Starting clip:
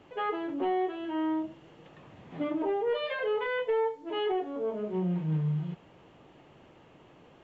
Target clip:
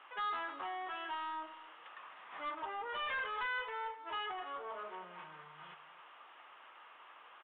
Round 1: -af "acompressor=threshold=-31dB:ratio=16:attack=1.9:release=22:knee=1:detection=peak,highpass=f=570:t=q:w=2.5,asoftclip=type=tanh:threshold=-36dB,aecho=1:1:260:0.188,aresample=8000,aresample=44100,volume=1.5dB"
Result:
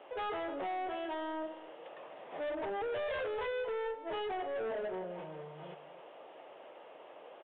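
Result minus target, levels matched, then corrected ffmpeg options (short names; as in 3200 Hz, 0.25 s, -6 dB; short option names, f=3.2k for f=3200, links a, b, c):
500 Hz band +11.0 dB
-af "acompressor=threshold=-31dB:ratio=16:attack=1.9:release=22:knee=1:detection=peak,highpass=f=1.2k:t=q:w=2.5,asoftclip=type=tanh:threshold=-36dB,aecho=1:1:260:0.188,aresample=8000,aresample=44100,volume=1.5dB"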